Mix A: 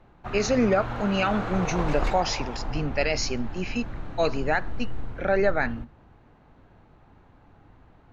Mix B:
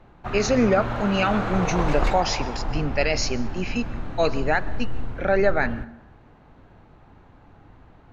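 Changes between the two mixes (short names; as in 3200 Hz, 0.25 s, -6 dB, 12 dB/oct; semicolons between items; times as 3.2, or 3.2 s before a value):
speech: send on; background +4.0 dB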